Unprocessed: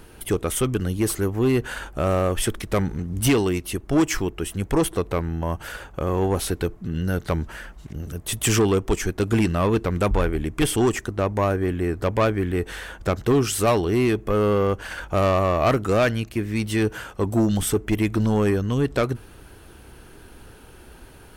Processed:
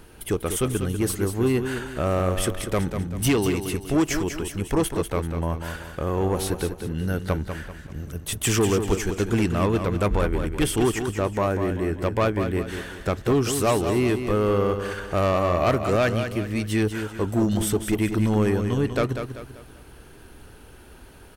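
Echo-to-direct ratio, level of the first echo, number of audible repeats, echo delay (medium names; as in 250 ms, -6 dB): -7.0 dB, -8.0 dB, 4, 194 ms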